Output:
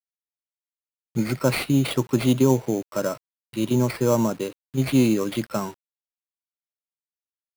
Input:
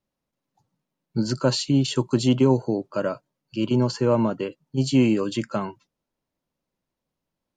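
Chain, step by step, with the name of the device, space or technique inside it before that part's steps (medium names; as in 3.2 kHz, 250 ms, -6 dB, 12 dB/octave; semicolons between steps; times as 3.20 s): early 8-bit sampler (sample-rate reducer 6.7 kHz, jitter 0%; bit crusher 8-bit)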